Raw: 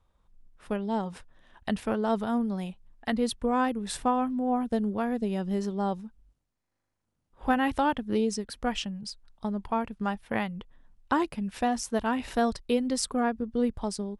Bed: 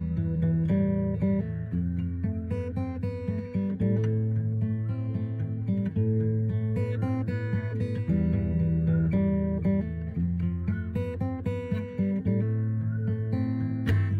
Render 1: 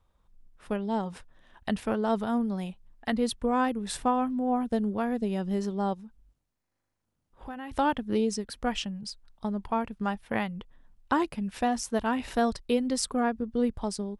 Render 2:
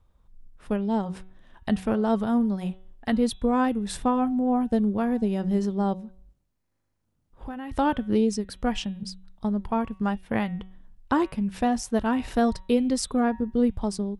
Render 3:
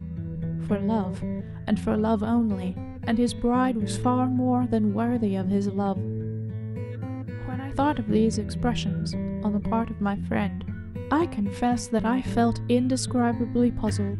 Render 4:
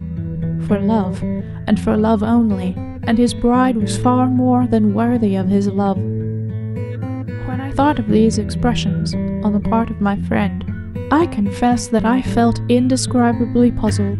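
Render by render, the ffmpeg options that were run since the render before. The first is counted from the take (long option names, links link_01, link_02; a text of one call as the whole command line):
ffmpeg -i in.wav -filter_complex "[0:a]asplit=3[link_01][link_02][link_03];[link_01]afade=type=out:start_time=5.93:duration=0.02[link_04];[link_02]acompressor=threshold=-43dB:ratio=2.5:attack=3.2:release=140:knee=1:detection=peak,afade=type=in:start_time=5.93:duration=0.02,afade=type=out:start_time=7.71:duration=0.02[link_05];[link_03]afade=type=in:start_time=7.71:duration=0.02[link_06];[link_04][link_05][link_06]amix=inputs=3:normalize=0" out.wav
ffmpeg -i in.wav -af "lowshelf=frequency=360:gain=7.5,bandreject=frequency=187.7:width_type=h:width=4,bandreject=frequency=375.4:width_type=h:width=4,bandreject=frequency=563.1:width_type=h:width=4,bandreject=frequency=750.8:width_type=h:width=4,bandreject=frequency=938.5:width_type=h:width=4,bandreject=frequency=1126.2:width_type=h:width=4,bandreject=frequency=1313.9:width_type=h:width=4,bandreject=frequency=1501.6:width_type=h:width=4,bandreject=frequency=1689.3:width_type=h:width=4,bandreject=frequency=1877:width_type=h:width=4,bandreject=frequency=2064.7:width_type=h:width=4,bandreject=frequency=2252.4:width_type=h:width=4,bandreject=frequency=2440.1:width_type=h:width=4,bandreject=frequency=2627.8:width_type=h:width=4,bandreject=frequency=2815.5:width_type=h:width=4,bandreject=frequency=3003.2:width_type=h:width=4,bandreject=frequency=3190.9:width_type=h:width=4,bandreject=frequency=3378.6:width_type=h:width=4,bandreject=frequency=3566.3:width_type=h:width=4,bandreject=frequency=3754:width_type=h:width=4,bandreject=frequency=3941.7:width_type=h:width=4" out.wav
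ffmpeg -i in.wav -i bed.wav -filter_complex "[1:a]volume=-5dB[link_01];[0:a][link_01]amix=inputs=2:normalize=0" out.wav
ffmpeg -i in.wav -af "volume=9dB,alimiter=limit=-3dB:level=0:latency=1" out.wav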